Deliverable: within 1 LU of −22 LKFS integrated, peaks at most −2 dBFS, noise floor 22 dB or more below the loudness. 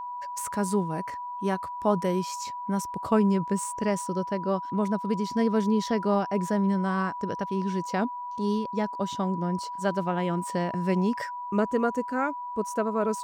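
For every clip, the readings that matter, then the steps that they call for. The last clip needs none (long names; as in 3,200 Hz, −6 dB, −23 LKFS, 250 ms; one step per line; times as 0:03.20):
interfering tone 980 Hz; level of the tone −33 dBFS; integrated loudness −28.0 LKFS; sample peak −10.0 dBFS; target loudness −22.0 LKFS
→ notch filter 980 Hz, Q 30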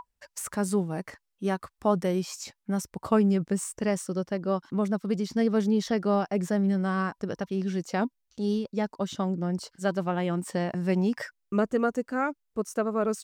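interfering tone none found; integrated loudness −28.5 LKFS; sample peak −10.5 dBFS; target loudness −22.0 LKFS
→ level +6.5 dB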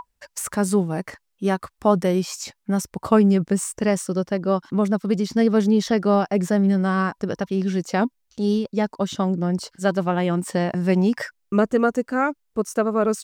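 integrated loudness −22.0 LKFS; sample peak −4.0 dBFS; background noise floor −73 dBFS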